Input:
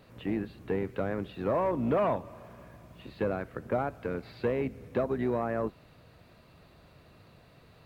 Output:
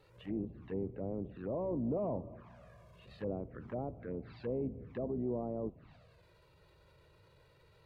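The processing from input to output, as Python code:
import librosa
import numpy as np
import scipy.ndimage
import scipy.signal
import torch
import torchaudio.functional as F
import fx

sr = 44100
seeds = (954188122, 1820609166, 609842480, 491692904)

y = fx.transient(x, sr, attack_db=-6, sustain_db=5)
y = fx.env_flanger(y, sr, rest_ms=2.4, full_db=-30.0)
y = fx.env_lowpass_down(y, sr, base_hz=620.0, full_db=-31.5)
y = F.gain(torch.from_numpy(y), -4.5).numpy()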